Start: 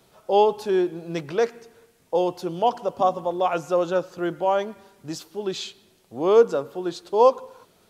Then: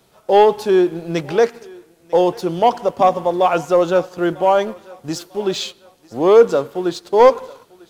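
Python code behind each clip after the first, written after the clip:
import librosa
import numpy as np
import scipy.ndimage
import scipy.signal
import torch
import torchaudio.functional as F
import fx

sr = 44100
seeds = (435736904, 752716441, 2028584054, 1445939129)

y = fx.leveller(x, sr, passes=1)
y = fx.echo_thinned(y, sr, ms=947, feedback_pct=40, hz=420.0, wet_db=-21.5)
y = F.gain(torch.from_numpy(y), 4.0).numpy()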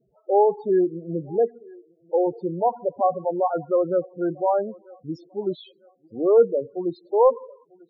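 y = fx.spec_topn(x, sr, count=8)
y = fx.high_shelf(y, sr, hz=2100.0, db=-11.5)
y = F.gain(torch.from_numpy(y), -5.5).numpy()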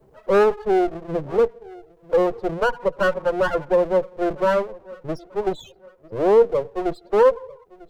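y = fx.lower_of_two(x, sr, delay_ms=2.0)
y = fx.band_squash(y, sr, depth_pct=40)
y = F.gain(torch.from_numpy(y), 3.5).numpy()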